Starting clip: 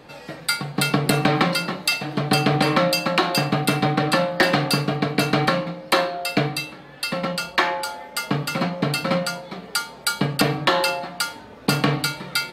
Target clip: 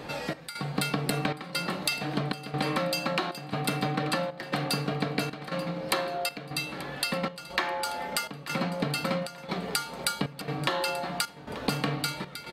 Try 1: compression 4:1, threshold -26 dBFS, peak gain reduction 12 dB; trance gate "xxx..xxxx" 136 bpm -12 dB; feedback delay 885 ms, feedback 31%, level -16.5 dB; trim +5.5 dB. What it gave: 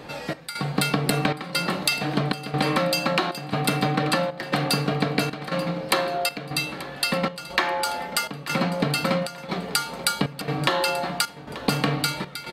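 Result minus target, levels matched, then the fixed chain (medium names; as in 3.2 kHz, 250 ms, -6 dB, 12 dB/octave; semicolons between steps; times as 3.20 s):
compression: peak gain reduction -6 dB
compression 4:1, threshold -34 dBFS, peak gain reduction 18 dB; trance gate "xxx..xxxx" 136 bpm -12 dB; feedback delay 885 ms, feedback 31%, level -16.5 dB; trim +5.5 dB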